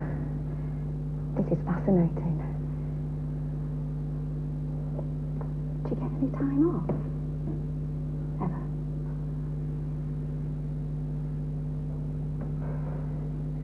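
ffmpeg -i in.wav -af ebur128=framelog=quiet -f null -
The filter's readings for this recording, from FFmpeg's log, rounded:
Integrated loudness:
  I:         -31.7 LUFS
  Threshold: -41.6 LUFS
Loudness range:
  LRA:         3.5 LU
  Threshold: -51.7 LUFS
  LRA low:   -33.5 LUFS
  LRA high:  -29.9 LUFS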